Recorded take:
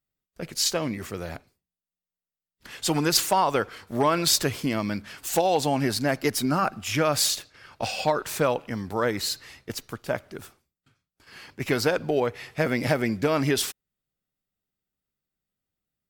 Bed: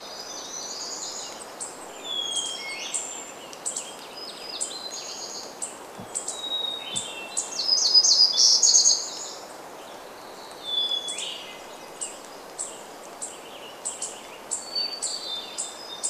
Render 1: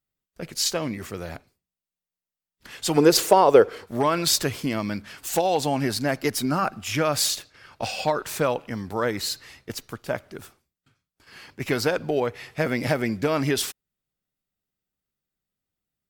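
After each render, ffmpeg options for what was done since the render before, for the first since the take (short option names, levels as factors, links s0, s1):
-filter_complex "[0:a]asettb=1/sr,asplit=3[s0][s1][s2];[s0]atrim=end=2.974[s3];[s1]atrim=start=2.97:end=3.86,asetpts=PTS-STARTPTS,afade=t=in:d=0.004:c=qsin,afade=t=out:st=0.886:d=0.004:c=qsin,equalizer=f=450:w=1.3:g=14[s4];[s2]atrim=start=3.856[s5];[s3][s4]acrossfade=d=0.004:c1=hsin:c2=qsin[s6];[s6][s5]acrossfade=d=0.004:c1=qsin:c2=hsin"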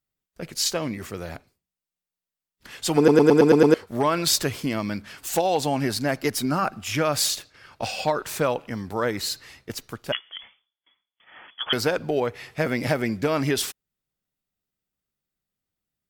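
-filter_complex "[0:a]asettb=1/sr,asplit=3[s0][s1][s2];[s0]atrim=end=10.124[s3];[s1]atrim=start=10.12:end=11.73,asetpts=PTS-STARTPTS,afade=t=in:d=0.004:c=qsin,afade=t=out:st=1.606:d=0.004:c=qsin,lowpass=f=3000:t=q:w=0.5098,lowpass=f=3000:t=q:w=0.6013,lowpass=f=3000:t=q:w=0.9,lowpass=f=3000:t=q:w=2.563,afreqshift=-3500[s4];[s2]atrim=start=11.726[s5];[s3][s4]acrossfade=d=0.004:c1=hsin:c2=qsin[s6];[s6][s5]acrossfade=d=0.004:c1=qsin:c2=hsin,asplit=8[s7][s8][s9][s10][s11][s12][s13][s14];[s7]atrim=end=3.082[s15];[s8]atrim=start=2.968:end=3.082[s16];[s9]atrim=start=2.968:end=3.082[s17];[s10]atrim=start=2.968:end=3.082[s18];[s11]atrim=start=2.968:end=3.082[s19];[s12]atrim=start=2.968:end=3.082[s20];[s13]atrim=start=2.968:end=3.082[s21];[s14]atrim=start=3.738[s22];[s15][s16]acrossfade=d=0.004:c1=hsin:c2=hsin[s23];[s23][s17]acrossfade=d=0.004:c1=hsin:c2=hsin[s24];[s24][s18]acrossfade=d=0.004:c1=hsin:c2=hsin[s25];[s25][s19]acrossfade=d=0.004:c1=hsin:c2=hsin[s26];[s26][s20]acrossfade=d=0.004:c1=hsin:c2=hsin[s27];[s27][s21]acrossfade=d=0.004:c1=hsin:c2=hsin[s28];[s28][s22]acrossfade=d=0.004:c1=hsin:c2=hsin"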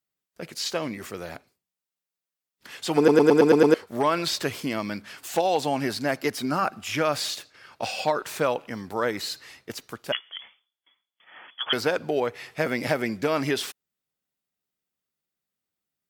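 -filter_complex "[0:a]highpass=f=240:p=1,acrossover=split=4300[s0][s1];[s1]acompressor=threshold=0.0178:ratio=4:attack=1:release=60[s2];[s0][s2]amix=inputs=2:normalize=0"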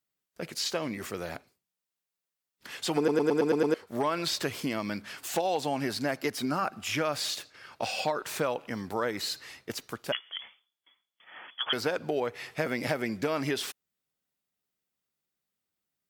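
-af "acompressor=threshold=0.0355:ratio=2"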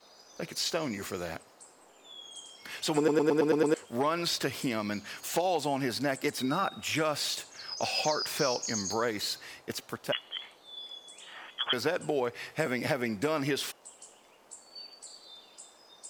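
-filter_complex "[1:a]volume=0.119[s0];[0:a][s0]amix=inputs=2:normalize=0"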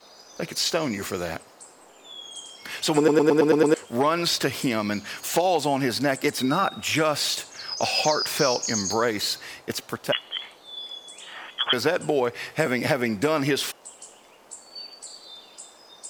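-af "volume=2.24"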